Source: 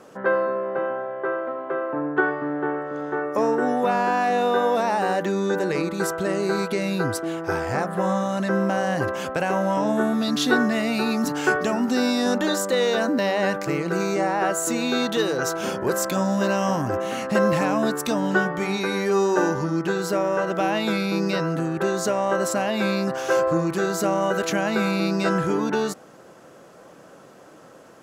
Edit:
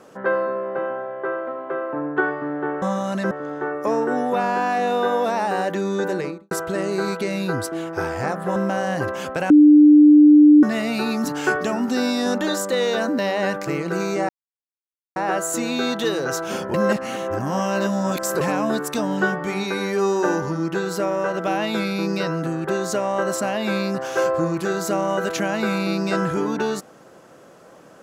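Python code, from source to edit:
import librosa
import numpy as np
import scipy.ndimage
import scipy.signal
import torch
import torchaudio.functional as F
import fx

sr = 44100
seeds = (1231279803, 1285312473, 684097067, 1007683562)

y = fx.studio_fade_out(x, sr, start_s=5.63, length_s=0.39)
y = fx.edit(y, sr, fx.move(start_s=8.07, length_s=0.49, to_s=2.82),
    fx.bleep(start_s=9.5, length_s=1.13, hz=298.0, db=-6.5),
    fx.insert_silence(at_s=14.29, length_s=0.87),
    fx.reverse_span(start_s=15.87, length_s=1.67), tone=tone)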